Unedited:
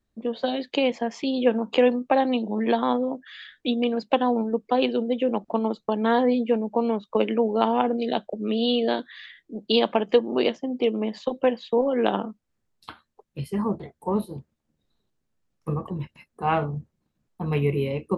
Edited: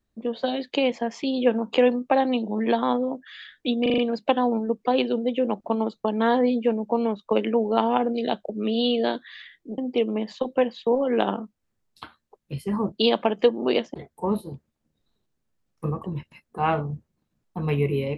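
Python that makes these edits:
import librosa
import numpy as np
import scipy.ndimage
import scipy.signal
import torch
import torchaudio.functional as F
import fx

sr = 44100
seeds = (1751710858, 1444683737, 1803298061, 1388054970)

y = fx.edit(x, sr, fx.stutter(start_s=3.82, slice_s=0.04, count=5),
    fx.move(start_s=9.62, length_s=1.02, to_s=13.78), tone=tone)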